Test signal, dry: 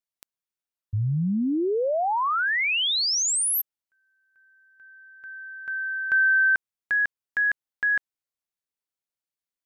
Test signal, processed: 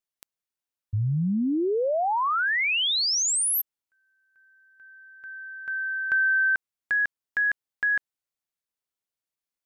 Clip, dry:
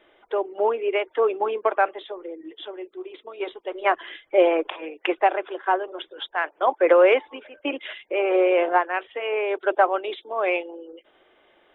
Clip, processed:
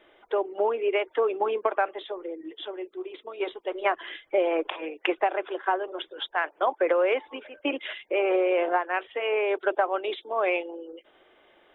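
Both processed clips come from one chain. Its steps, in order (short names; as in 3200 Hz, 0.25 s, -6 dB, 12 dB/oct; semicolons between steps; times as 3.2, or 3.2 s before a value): compressor 6:1, threshold -20 dBFS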